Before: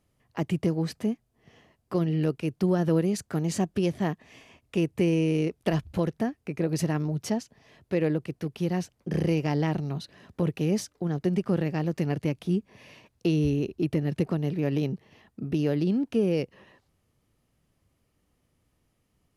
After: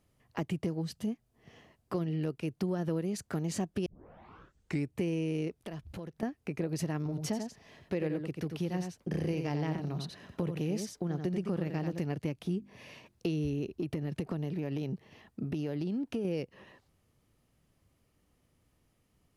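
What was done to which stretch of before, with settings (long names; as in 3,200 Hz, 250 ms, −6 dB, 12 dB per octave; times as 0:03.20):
0:00.82–0:01.07: gain on a spectral selection 230–2,700 Hz −8 dB
0:03.86: tape start 1.10 s
0:05.58–0:06.23: downward compressor 3 to 1, threshold −43 dBFS
0:06.97–0:11.99: single-tap delay 88 ms −7 dB
0:12.58–0:13.27: mains-hum notches 50/100/150/200/250/300/350 Hz
0:13.77–0:16.25: downward compressor 3 to 1, threshold −26 dBFS
whole clip: downward compressor 2.5 to 1, threshold −33 dBFS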